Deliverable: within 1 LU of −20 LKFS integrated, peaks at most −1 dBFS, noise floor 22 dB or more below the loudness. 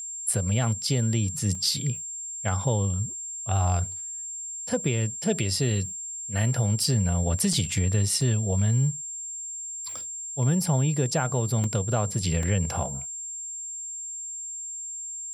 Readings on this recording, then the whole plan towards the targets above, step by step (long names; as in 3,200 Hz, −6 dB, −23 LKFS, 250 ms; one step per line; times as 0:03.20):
number of dropouts 5; longest dropout 2.8 ms; interfering tone 7,400 Hz; level of the tone −33 dBFS; integrated loudness −26.5 LKFS; sample peak −12.0 dBFS; target loudness −20.0 LKFS
→ repair the gap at 0:01.55/0:07.53/0:08.21/0:11.64/0:12.43, 2.8 ms
notch filter 7,400 Hz, Q 30
level +6.5 dB